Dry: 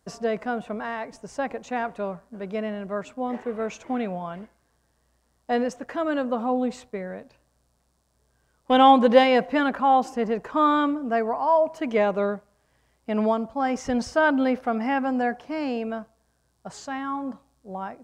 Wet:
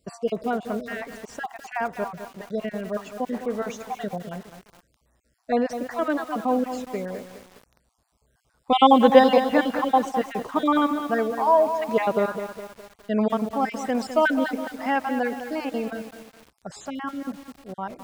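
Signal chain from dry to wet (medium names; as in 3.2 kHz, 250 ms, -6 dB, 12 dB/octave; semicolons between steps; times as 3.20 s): random holes in the spectrogram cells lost 38%; 13.65–15.71 s: high-pass 260 Hz 12 dB/octave; bit-crushed delay 207 ms, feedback 55%, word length 7-bit, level -9 dB; trim +2 dB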